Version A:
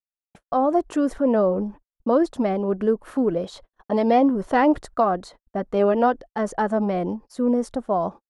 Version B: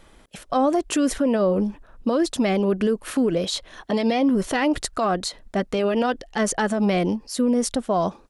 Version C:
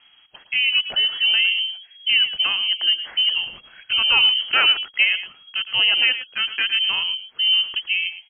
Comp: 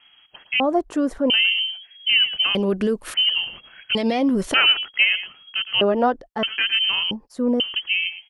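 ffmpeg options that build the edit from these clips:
-filter_complex "[0:a]asplit=3[a][b][c];[1:a]asplit=2[d][e];[2:a]asplit=6[f][g][h][i][j][k];[f]atrim=end=0.602[l];[a]atrim=start=0.598:end=1.302[m];[g]atrim=start=1.298:end=2.552[n];[d]atrim=start=2.548:end=3.142[o];[h]atrim=start=3.138:end=3.952[p];[e]atrim=start=3.948:end=4.542[q];[i]atrim=start=4.538:end=5.812[r];[b]atrim=start=5.808:end=6.432[s];[j]atrim=start=6.428:end=7.112[t];[c]atrim=start=7.108:end=7.602[u];[k]atrim=start=7.598[v];[l][m]acrossfade=d=0.004:c1=hsin:c2=hsin[w];[w][n]acrossfade=d=0.004:c1=hsin:c2=hsin[x];[x][o]acrossfade=d=0.004:c1=hsin:c2=hsin[y];[y][p]acrossfade=d=0.004:c1=hsin:c2=hsin[z];[z][q]acrossfade=d=0.004:c1=hsin:c2=hsin[aa];[aa][r]acrossfade=d=0.004:c1=hsin:c2=hsin[ab];[ab][s]acrossfade=d=0.004:c1=hsin:c2=hsin[ac];[ac][t]acrossfade=d=0.004:c1=hsin:c2=hsin[ad];[ad][u]acrossfade=d=0.004:c1=hsin:c2=hsin[ae];[ae][v]acrossfade=d=0.004:c1=hsin:c2=hsin"

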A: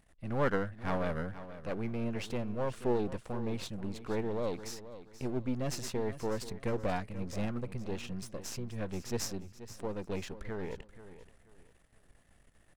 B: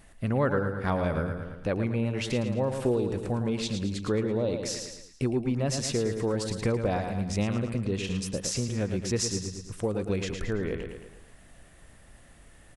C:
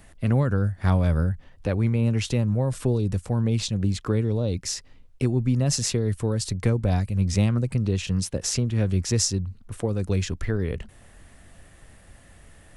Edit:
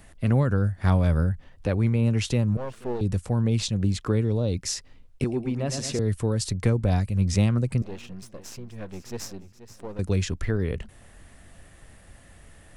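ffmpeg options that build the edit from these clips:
-filter_complex "[0:a]asplit=2[a][b];[2:a]asplit=4[c][d][e][f];[c]atrim=end=2.572[g];[a]atrim=start=2.568:end=3.012[h];[d]atrim=start=3.008:end=5.242[i];[1:a]atrim=start=5.238:end=5.992[j];[e]atrim=start=5.988:end=7.822[k];[b]atrim=start=7.818:end=9.992[l];[f]atrim=start=9.988[m];[g][h]acrossfade=d=0.004:c1=hsin:c2=hsin[n];[n][i]acrossfade=d=0.004:c1=hsin:c2=hsin[o];[o][j]acrossfade=d=0.004:c1=hsin:c2=hsin[p];[p][k]acrossfade=d=0.004:c1=hsin:c2=hsin[q];[q][l]acrossfade=d=0.004:c1=hsin:c2=hsin[r];[r][m]acrossfade=d=0.004:c1=hsin:c2=hsin"

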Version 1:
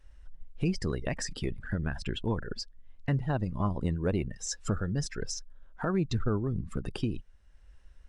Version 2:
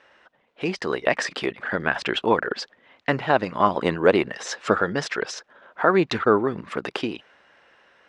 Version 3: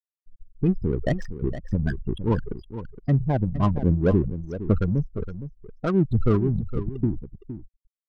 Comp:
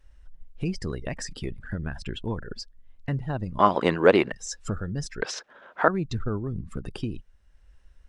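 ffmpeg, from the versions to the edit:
-filter_complex "[1:a]asplit=2[a][b];[0:a]asplit=3[c][d][e];[c]atrim=end=3.592[f];[a]atrim=start=3.588:end=4.322[g];[d]atrim=start=4.318:end=5.222[h];[b]atrim=start=5.218:end=5.882[i];[e]atrim=start=5.878[j];[f][g]acrossfade=d=0.004:c1=hsin:c2=hsin[k];[k][h]acrossfade=d=0.004:c1=hsin:c2=hsin[l];[l][i]acrossfade=d=0.004:c1=hsin:c2=hsin[m];[m][j]acrossfade=d=0.004:c1=hsin:c2=hsin"

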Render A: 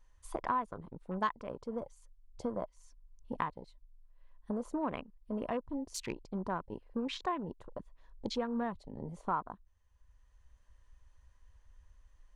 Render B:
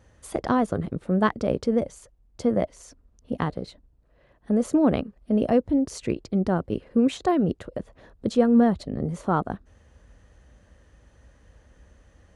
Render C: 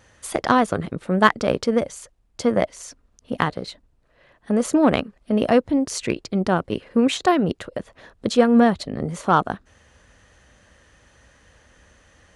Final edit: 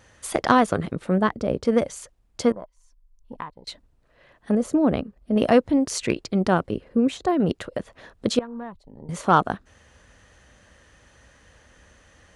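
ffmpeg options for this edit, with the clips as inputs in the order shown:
-filter_complex "[1:a]asplit=3[a][b][c];[0:a]asplit=2[d][e];[2:a]asplit=6[f][g][h][i][j][k];[f]atrim=end=1.182[l];[a]atrim=start=1.178:end=1.652[m];[g]atrim=start=1.648:end=2.522[n];[d]atrim=start=2.518:end=3.672[o];[h]atrim=start=3.668:end=4.552[p];[b]atrim=start=4.548:end=5.362[q];[i]atrim=start=5.358:end=6.712[r];[c]atrim=start=6.708:end=7.402[s];[j]atrim=start=7.398:end=8.392[t];[e]atrim=start=8.388:end=9.092[u];[k]atrim=start=9.088[v];[l][m]acrossfade=d=0.004:c1=hsin:c2=hsin[w];[w][n]acrossfade=d=0.004:c1=hsin:c2=hsin[x];[x][o]acrossfade=d=0.004:c1=hsin:c2=hsin[y];[y][p]acrossfade=d=0.004:c1=hsin:c2=hsin[z];[z][q]acrossfade=d=0.004:c1=hsin:c2=hsin[aa];[aa][r]acrossfade=d=0.004:c1=hsin:c2=hsin[ab];[ab][s]acrossfade=d=0.004:c1=hsin:c2=hsin[ac];[ac][t]acrossfade=d=0.004:c1=hsin:c2=hsin[ad];[ad][u]acrossfade=d=0.004:c1=hsin:c2=hsin[ae];[ae][v]acrossfade=d=0.004:c1=hsin:c2=hsin"

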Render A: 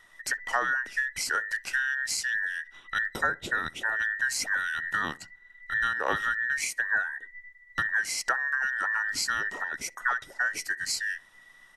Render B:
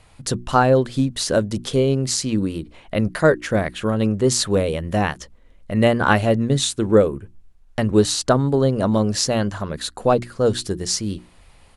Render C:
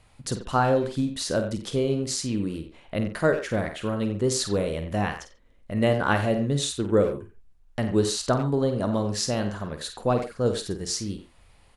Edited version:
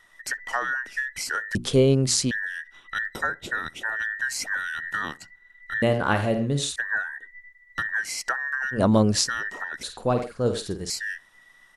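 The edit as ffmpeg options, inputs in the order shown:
-filter_complex "[1:a]asplit=2[a][b];[2:a]asplit=2[c][d];[0:a]asplit=5[e][f][g][h][i];[e]atrim=end=1.552[j];[a]atrim=start=1.548:end=2.312[k];[f]atrim=start=2.308:end=5.822[l];[c]atrim=start=5.818:end=6.762[m];[g]atrim=start=6.758:end=8.81[n];[b]atrim=start=8.71:end=9.3[o];[h]atrim=start=9.2:end=9.832[p];[d]atrim=start=9.828:end=10.902[q];[i]atrim=start=10.898[r];[j][k]acrossfade=d=0.004:c1=hsin:c2=hsin[s];[s][l]acrossfade=d=0.004:c1=hsin:c2=hsin[t];[t][m]acrossfade=d=0.004:c1=hsin:c2=hsin[u];[u][n]acrossfade=d=0.004:c1=hsin:c2=hsin[v];[v][o]acrossfade=d=0.1:c1=tri:c2=tri[w];[w][p]acrossfade=d=0.1:c1=tri:c2=tri[x];[x][q]acrossfade=d=0.004:c1=hsin:c2=hsin[y];[y][r]acrossfade=d=0.004:c1=hsin:c2=hsin"

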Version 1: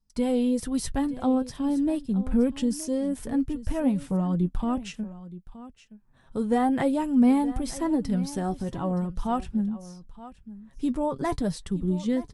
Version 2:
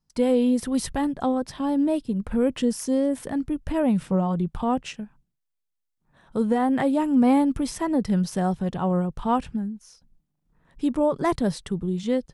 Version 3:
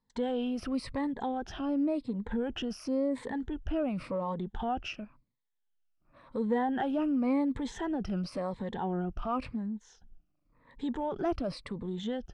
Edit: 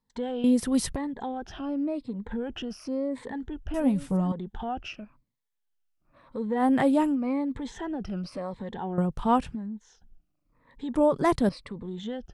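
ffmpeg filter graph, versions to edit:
-filter_complex "[1:a]asplit=4[a][b][c][d];[2:a]asplit=6[e][f][g][h][i][j];[e]atrim=end=0.442[k];[a]atrim=start=0.438:end=0.962[l];[f]atrim=start=0.958:end=3.742[m];[0:a]atrim=start=3.738:end=4.322[n];[g]atrim=start=4.318:end=6.65[o];[b]atrim=start=6.55:end=7.17[p];[h]atrim=start=7.07:end=8.982[q];[c]atrim=start=8.978:end=9.552[r];[i]atrim=start=9.548:end=10.952[s];[d]atrim=start=10.948:end=11.492[t];[j]atrim=start=11.488[u];[k][l]acrossfade=d=0.004:c1=hsin:c2=hsin[v];[v][m]acrossfade=d=0.004:c1=hsin:c2=hsin[w];[w][n]acrossfade=d=0.004:c1=hsin:c2=hsin[x];[x][o]acrossfade=d=0.004:c1=hsin:c2=hsin[y];[y][p]acrossfade=d=0.1:c1=tri:c2=tri[z];[z][q]acrossfade=d=0.1:c1=tri:c2=tri[aa];[aa][r]acrossfade=d=0.004:c1=hsin:c2=hsin[ab];[ab][s]acrossfade=d=0.004:c1=hsin:c2=hsin[ac];[ac][t]acrossfade=d=0.004:c1=hsin:c2=hsin[ad];[ad][u]acrossfade=d=0.004:c1=hsin:c2=hsin"

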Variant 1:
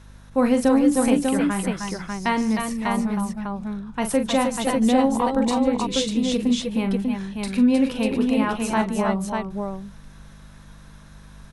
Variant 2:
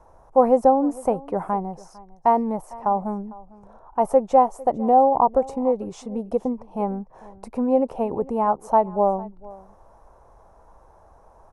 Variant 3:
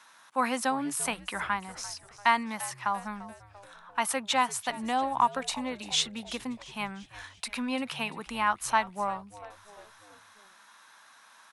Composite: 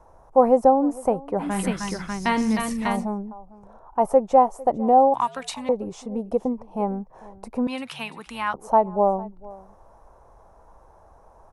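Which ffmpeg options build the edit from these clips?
-filter_complex "[2:a]asplit=2[a][b];[1:a]asplit=4[c][d][e][f];[c]atrim=end=1.61[g];[0:a]atrim=start=1.37:end=3.11[h];[d]atrim=start=2.87:end=5.142[i];[a]atrim=start=5.138:end=5.692[j];[e]atrim=start=5.688:end=7.672[k];[b]atrim=start=7.668:end=8.542[l];[f]atrim=start=8.538[m];[g][h]acrossfade=d=0.24:c1=tri:c2=tri[n];[n][i]acrossfade=d=0.24:c1=tri:c2=tri[o];[o][j]acrossfade=d=0.004:c1=hsin:c2=hsin[p];[p][k]acrossfade=d=0.004:c1=hsin:c2=hsin[q];[q][l]acrossfade=d=0.004:c1=hsin:c2=hsin[r];[r][m]acrossfade=d=0.004:c1=hsin:c2=hsin"

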